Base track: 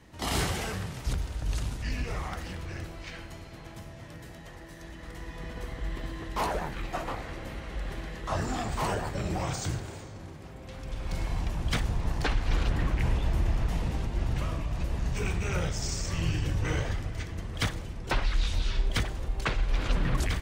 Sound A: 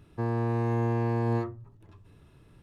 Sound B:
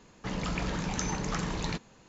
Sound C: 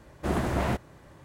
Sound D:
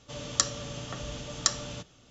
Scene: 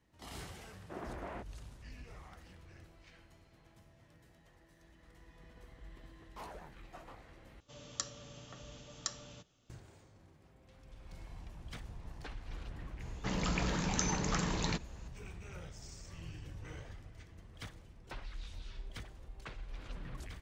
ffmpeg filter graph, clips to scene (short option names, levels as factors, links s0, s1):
-filter_complex "[0:a]volume=0.119[s0];[3:a]acrossover=split=240 3100:gain=0.251 1 0.0631[s1][s2][s3];[s1][s2][s3]amix=inputs=3:normalize=0[s4];[2:a]highshelf=f=5700:g=5[s5];[s0]asplit=2[s6][s7];[s6]atrim=end=7.604[s8];[4:a]atrim=end=2.1,asetpts=PTS-STARTPTS,volume=0.211[s9];[s7]atrim=start=9.696[s10];[s4]atrim=end=1.24,asetpts=PTS-STARTPTS,volume=0.188,afade=t=in:d=0.004:c=hsin,afade=t=out:st=1.236:d=0.004:c=hsin,adelay=660[s11];[s5]atrim=end=2.08,asetpts=PTS-STARTPTS,volume=0.794,afade=t=in:d=0.004:c=hsin,afade=t=out:st=2.076:d=0.004:c=hsin,adelay=573300S[s12];[s8][s9]acrossfade=d=0.004:c1=hsin:c2=hsin[s13];[s13][s10]acrossfade=d=0.004:c1=hsin:c2=hsin[s14];[s14][s11][s12]amix=inputs=3:normalize=0"